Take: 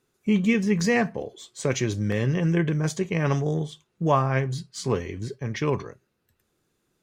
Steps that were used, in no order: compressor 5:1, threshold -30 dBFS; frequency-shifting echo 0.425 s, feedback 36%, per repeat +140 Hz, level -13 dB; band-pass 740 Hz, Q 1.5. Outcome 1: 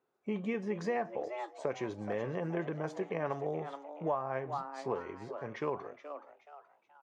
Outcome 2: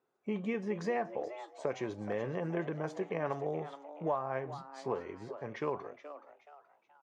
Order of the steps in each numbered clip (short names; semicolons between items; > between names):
band-pass > frequency-shifting echo > compressor; band-pass > compressor > frequency-shifting echo